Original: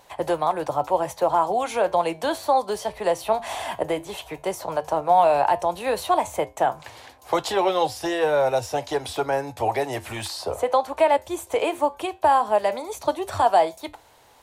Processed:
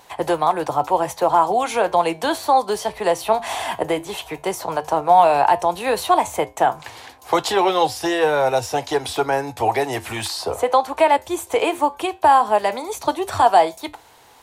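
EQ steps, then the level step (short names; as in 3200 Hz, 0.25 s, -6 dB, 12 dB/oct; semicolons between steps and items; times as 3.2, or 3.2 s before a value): low shelf 100 Hz -6 dB; bell 580 Hz -7 dB 0.25 oct; +5.5 dB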